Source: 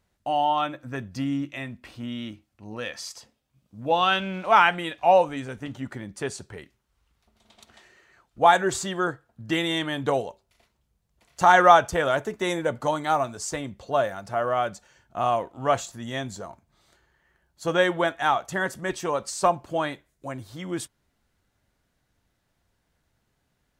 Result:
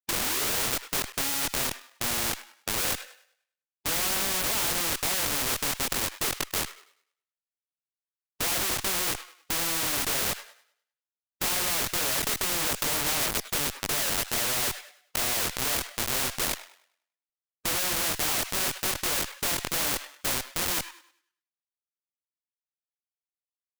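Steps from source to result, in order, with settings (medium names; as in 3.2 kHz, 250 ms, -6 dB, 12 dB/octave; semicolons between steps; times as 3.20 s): tape start-up on the opening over 0.86 s; high-pass 360 Hz 24 dB/octave; gate -49 dBFS, range -10 dB; Bessel low-pass 3.4 kHz, order 4; tilt shelf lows +9.5 dB, about 740 Hz; waveshaping leveller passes 1; in parallel at +2 dB: peak limiter -13.5 dBFS, peak gain reduction 10 dB; on the sum: compression 8:1, threshold -12 dBFS, peak gain reduction 7.5 dB; Schmitt trigger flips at -28.5 dBFS; on a send: feedback echo behind a high-pass 101 ms, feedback 32%, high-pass 1.5 kHz, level -23 dB; on the sum: chorus voices 4, 0.86 Hz, delay 22 ms, depth 2 ms; spectrum-flattening compressor 4:1; trim +3.5 dB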